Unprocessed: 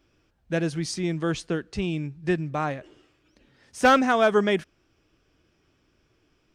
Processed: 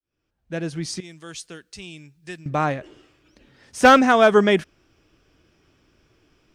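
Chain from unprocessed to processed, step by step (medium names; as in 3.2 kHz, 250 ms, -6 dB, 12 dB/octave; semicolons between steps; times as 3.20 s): fade-in on the opening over 1.50 s; 1.00–2.46 s: pre-emphasis filter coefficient 0.9; trim +5.5 dB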